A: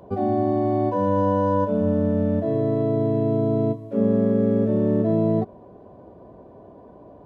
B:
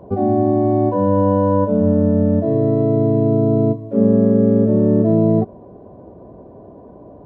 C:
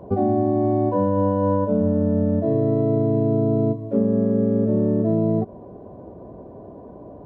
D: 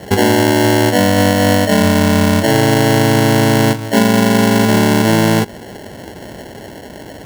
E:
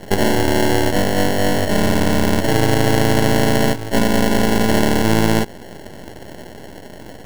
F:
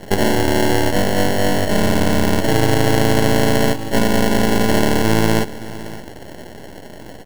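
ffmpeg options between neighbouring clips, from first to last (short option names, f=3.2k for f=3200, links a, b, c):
-af "tiltshelf=f=1.4k:g=7"
-af "acompressor=threshold=-16dB:ratio=6"
-af "acrusher=samples=36:mix=1:aa=0.000001,volume=8dB"
-af "aeval=exprs='max(val(0),0)':c=same"
-af "aecho=1:1:566:0.15"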